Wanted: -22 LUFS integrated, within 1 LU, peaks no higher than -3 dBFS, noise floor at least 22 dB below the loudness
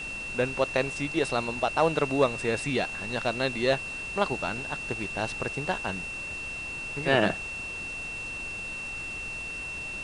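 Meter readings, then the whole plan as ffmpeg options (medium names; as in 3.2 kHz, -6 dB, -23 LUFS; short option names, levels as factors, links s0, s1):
steady tone 2.7 kHz; tone level -34 dBFS; noise floor -36 dBFS; noise floor target -51 dBFS; loudness -29.0 LUFS; peak level -8.0 dBFS; loudness target -22.0 LUFS
-> -af "bandreject=f=2700:w=30"
-af "afftdn=nr=15:nf=-36"
-af "volume=2.24,alimiter=limit=0.708:level=0:latency=1"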